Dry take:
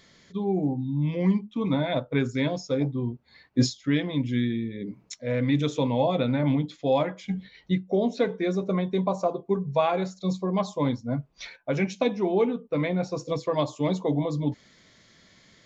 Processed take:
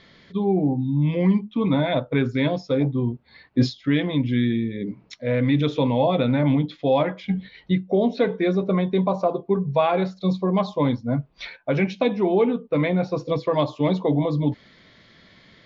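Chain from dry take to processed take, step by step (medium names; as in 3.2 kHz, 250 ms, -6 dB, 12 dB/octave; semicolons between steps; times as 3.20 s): low-pass 4.3 kHz 24 dB/octave; in parallel at -1 dB: peak limiter -19.5 dBFS, peak gain reduction 10 dB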